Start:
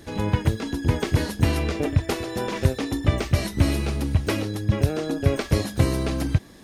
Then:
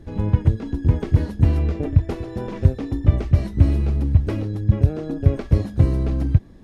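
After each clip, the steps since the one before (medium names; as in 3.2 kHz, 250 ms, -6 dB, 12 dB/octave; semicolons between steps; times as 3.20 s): tilt EQ -3.5 dB/octave; trim -6.5 dB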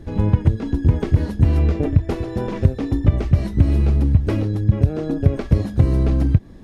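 compression 5:1, threshold -14 dBFS, peak gain reduction 6.5 dB; trim +4.5 dB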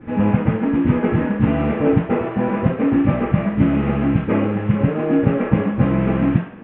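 CVSD coder 16 kbps; reverberation RT60 0.60 s, pre-delay 3 ms, DRR -13 dB; trim -8.5 dB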